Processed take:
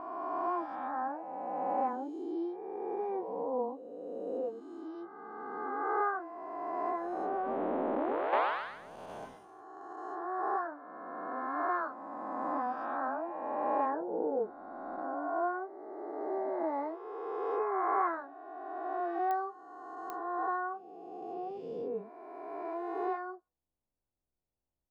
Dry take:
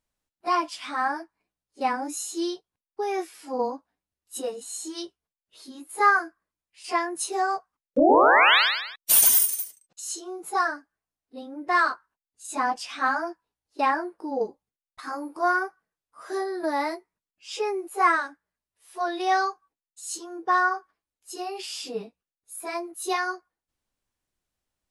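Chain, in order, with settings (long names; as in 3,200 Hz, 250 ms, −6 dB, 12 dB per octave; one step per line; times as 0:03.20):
peak hold with a rise ahead of every peak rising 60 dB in 2.57 s
Chebyshev low-pass filter 700 Hz, order 2
0:06.89–0:08.33: downward compressor 6 to 1, threshold −22 dBFS, peak gain reduction 10.5 dB
digital clicks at 0:19.31/0:20.10, −16 dBFS
level −8 dB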